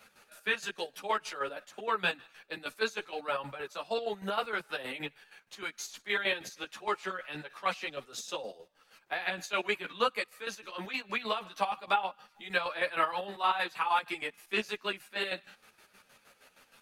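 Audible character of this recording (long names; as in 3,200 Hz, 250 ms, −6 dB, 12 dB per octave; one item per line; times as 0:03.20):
chopped level 6.4 Hz, depth 65%, duty 45%
a shimmering, thickened sound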